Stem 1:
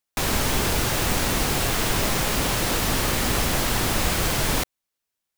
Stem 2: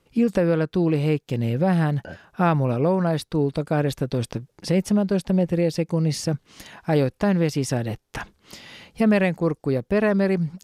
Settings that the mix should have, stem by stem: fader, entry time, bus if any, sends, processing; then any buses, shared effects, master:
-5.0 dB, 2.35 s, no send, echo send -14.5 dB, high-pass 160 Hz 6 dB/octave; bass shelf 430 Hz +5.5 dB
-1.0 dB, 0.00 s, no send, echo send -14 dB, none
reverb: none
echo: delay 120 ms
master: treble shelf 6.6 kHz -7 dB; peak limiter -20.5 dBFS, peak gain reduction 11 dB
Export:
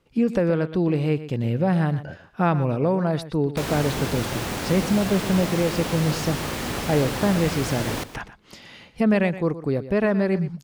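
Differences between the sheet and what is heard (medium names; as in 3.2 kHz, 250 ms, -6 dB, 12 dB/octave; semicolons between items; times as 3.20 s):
stem 1: entry 2.35 s -> 3.40 s; master: missing peak limiter -20.5 dBFS, peak gain reduction 11 dB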